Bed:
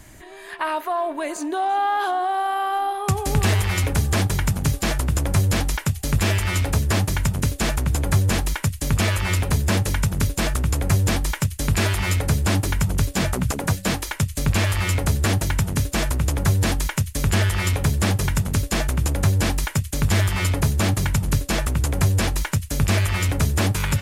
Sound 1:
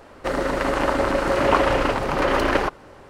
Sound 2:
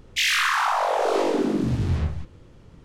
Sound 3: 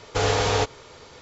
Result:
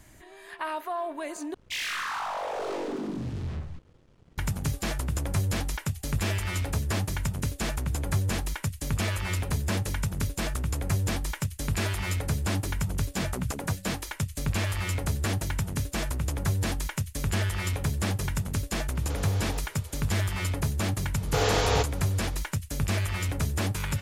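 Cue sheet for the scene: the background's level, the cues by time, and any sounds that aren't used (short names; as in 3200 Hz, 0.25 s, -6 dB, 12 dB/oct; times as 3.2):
bed -8 dB
1.54 replace with 2 -15 dB + sample leveller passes 2
18.95 add 3 -6 dB + compressor, threshold -30 dBFS
21.18 add 3 -3 dB
not used: 1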